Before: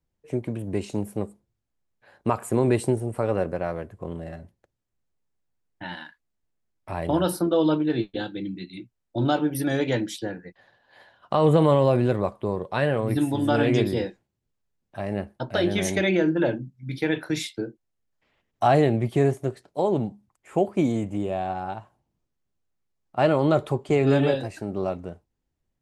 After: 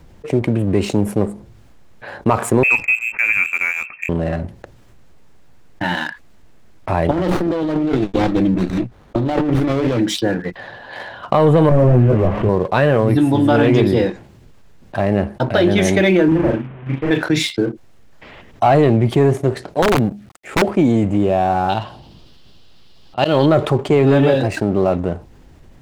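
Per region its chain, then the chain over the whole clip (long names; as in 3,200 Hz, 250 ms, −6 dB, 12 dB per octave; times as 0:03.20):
0:02.63–0:04.09: Butterworth high-pass 220 Hz + voice inversion scrambler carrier 2,900 Hz + expander for the loud parts, over −34 dBFS
0:07.11–0:09.99: compressor whose output falls as the input rises −30 dBFS + windowed peak hold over 17 samples
0:11.69–0:12.49: linear delta modulator 16 kbit/s, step −32 dBFS + spectral tilt −2.5 dB per octave + micro pitch shift up and down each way 25 cents
0:16.28–0:17.11: linear delta modulator 16 kbit/s, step −39 dBFS + double-tracking delay 37 ms −2 dB + expander for the loud parts 2.5 to 1, over −34 dBFS
0:19.82–0:20.62: mu-law and A-law mismatch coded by A + parametric band 1,000 Hz −12 dB 0.41 octaves + wrap-around overflow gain 17 dB
0:21.69–0:23.46: flat-topped bell 3,800 Hz +14 dB 1.1 octaves + volume swells 140 ms
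whole clip: low-pass filter 3,100 Hz 6 dB per octave; leveller curve on the samples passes 1; envelope flattener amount 50%; level +3 dB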